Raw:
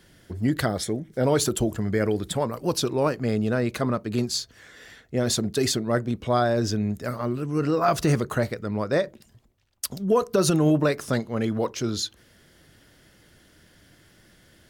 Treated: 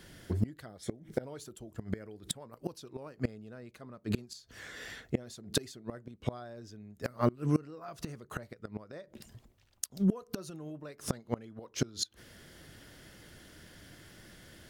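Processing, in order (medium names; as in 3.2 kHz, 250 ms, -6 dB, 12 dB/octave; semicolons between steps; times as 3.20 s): inverted gate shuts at -18 dBFS, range -26 dB; trim +2 dB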